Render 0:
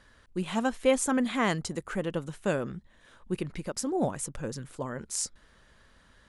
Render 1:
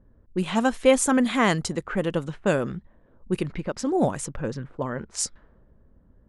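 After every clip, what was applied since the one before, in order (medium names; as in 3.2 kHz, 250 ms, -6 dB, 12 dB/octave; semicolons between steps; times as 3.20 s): level-controlled noise filter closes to 340 Hz, open at -27 dBFS; trim +6 dB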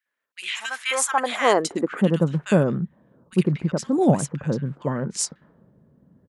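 bands offset in time highs, lows 60 ms, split 1.5 kHz; high-pass sweep 2.2 kHz -> 150 Hz, 0.63–2.19 s; trim +2 dB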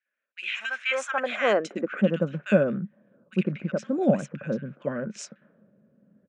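cabinet simulation 160–6100 Hz, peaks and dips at 210 Hz +9 dB, 570 Hz +10 dB, 920 Hz -8 dB, 1.5 kHz +9 dB, 2.5 kHz +10 dB, 4.6 kHz -9 dB; trim -7.5 dB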